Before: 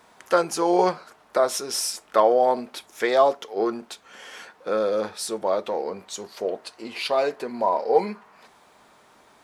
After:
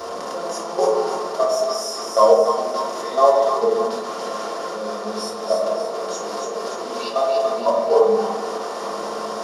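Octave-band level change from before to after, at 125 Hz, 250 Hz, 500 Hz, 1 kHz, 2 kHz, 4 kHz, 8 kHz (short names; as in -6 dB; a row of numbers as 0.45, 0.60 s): n/a, -1.5 dB, +4.5 dB, +3.5 dB, -2.0 dB, +2.5 dB, 0.0 dB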